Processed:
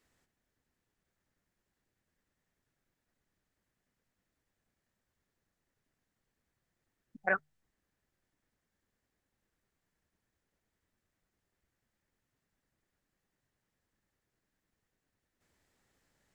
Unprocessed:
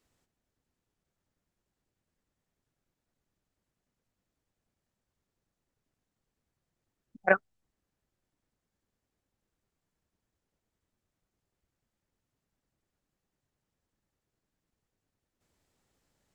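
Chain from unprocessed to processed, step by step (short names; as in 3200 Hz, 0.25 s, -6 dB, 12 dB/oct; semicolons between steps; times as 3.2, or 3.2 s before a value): bell 1800 Hz +6.5 dB 0.61 oct; notches 50/100/150 Hz; limiter -17.5 dBFS, peak gain reduction 12.5 dB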